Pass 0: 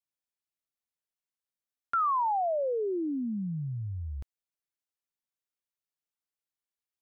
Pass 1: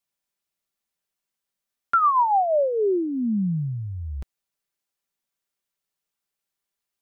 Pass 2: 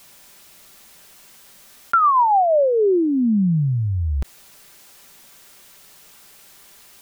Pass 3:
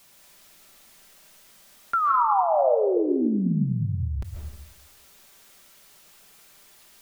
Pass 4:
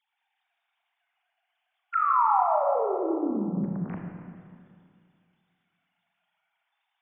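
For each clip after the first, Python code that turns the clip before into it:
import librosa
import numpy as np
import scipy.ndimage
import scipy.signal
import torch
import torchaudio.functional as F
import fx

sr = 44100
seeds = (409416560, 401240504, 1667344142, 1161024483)

y1 = x + 0.35 * np.pad(x, (int(5.1 * sr / 1000.0), 0))[:len(x)]
y1 = y1 * 10.0 ** (7.5 / 20.0)
y2 = fx.env_flatten(y1, sr, amount_pct=50)
y2 = y2 * 10.0 ** (2.5 / 20.0)
y3 = fx.rev_freeverb(y2, sr, rt60_s=0.95, hf_ratio=0.75, predelay_ms=100, drr_db=1.0)
y3 = y3 * 10.0 ** (-7.5 / 20.0)
y4 = fx.sine_speech(y3, sr)
y4 = fx.rev_schroeder(y4, sr, rt60_s=2.3, comb_ms=27, drr_db=0.0)
y4 = y4 * 10.0 ** (-6.5 / 20.0)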